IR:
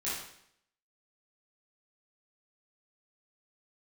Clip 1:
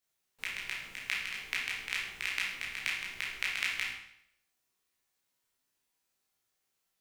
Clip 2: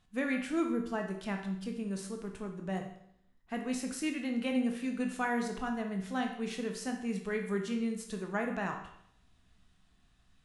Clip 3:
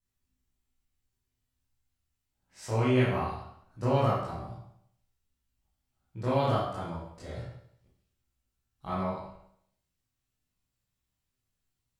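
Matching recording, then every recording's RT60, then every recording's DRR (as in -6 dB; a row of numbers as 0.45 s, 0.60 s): 3; 0.70 s, 0.70 s, 0.70 s; -6.0 dB, 3.0 dB, -10.0 dB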